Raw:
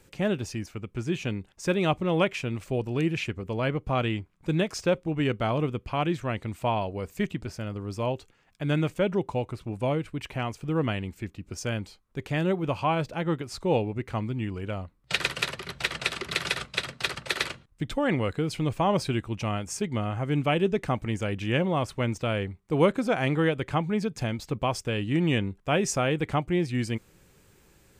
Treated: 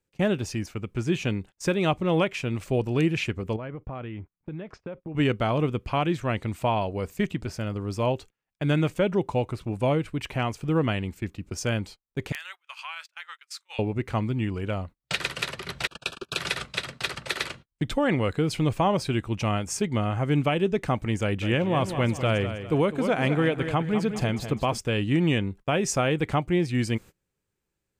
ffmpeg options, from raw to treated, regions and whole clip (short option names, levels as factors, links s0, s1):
-filter_complex "[0:a]asettb=1/sr,asplit=3[s0][s1][s2];[s0]atrim=end=3.564[s3];[s1]atrim=start=3.56:end=5.15,asetpts=PTS-STARTPTS,afade=t=in:d=0.004:c=qsin,afade=t=out:st=1.586:d=0.004:c=qsin,lowpass=2000,acompressor=threshold=0.0178:ratio=16:attack=3.2:release=140:knee=1:detection=peak[s4];[s2]atrim=start=5.146[s5];[s3][s4]acrossfade=d=0.004:c1=hsin:c2=qsin[s6];[s6][s5]acrossfade=d=0.004:c1=qsin:c2=hsin,asettb=1/sr,asplit=3[s7][s8][s9];[s7]atrim=end=12.324[s10];[s8]atrim=start=12.32:end=13.79,asetpts=PTS-STARTPTS,afade=t=in:d=0.004:c=qsin,afade=t=out:st=1.466:d=0.004:c=qsin,highpass=f=1400:w=0.5412,highpass=f=1400:w=1.3066,acompressor=threshold=0.0112:ratio=2:attack=3.2:release=140:knee=1:detection=peak,aeval=exprs='(mod(18.8*val(0)+1,2)-1)/18.8':c=same[s11];[s9]atrim=start=13.786[s12];[s10][s11]acrossfade=d=0.004:c1=hsin:c2=qsin[s13];[s13][s12]acrossfade=d=0.004:c1=qsin:c2=hsin,asettb=1/sr,asplit=3[s14][s15][s16];[s14]atrim=end=15.874[s17];[s15]atrim=start=15.87:end=16.38,asetpts=PTS-STARTPTS,afade=t=in:d=0.004:c=qsin,afade=t=out:st=0.506:d=0.004:c=qsin,agate=range=0.0282:threshold=0.02:ratio=16:release=100:detection=peak,asuperstop=centerf=2000:order=12:qfactor=3.4[s18];[s16]atrim=start=16.376[s19];[s17][s18]acrossfade=d=0.004:c1=hsin:c2=qsin[s20];[s20][s19]acrossfade=d=0.004:c1=qsin:c2=hsin,asettb=1/sr,asplit=3[s21][s22][s23];[s21]atrim=end=21.214[s24];[s22]atrim=start=21.21:end=24.78,asetpts=PTS-STARTPTS,afade=t=in:d=0.004:c=qsin,afade=t=out:st=3.566:d=0.004:c=qsin,equalizer=f=5500:t=o:w=0.33:g=-4,aecho=1:1:202|404|606|808:0.299|0.116|0.0454|0.0177,atrim=end_sample=157437[s25];[s23]atrim=start=24.776[s26];[s24][s25]acrossfade=d=0.004:c1=hsin:c2=qsin[s27];[s27][s26]acrossfade=d=0.004:c1=qsin:c2=hsin,agate=range=0.0447:threshold=0.00631:ratio=16:detection=peak,alimiter=limit=0.141:level=0:latency=1:release=373,volume=1.5"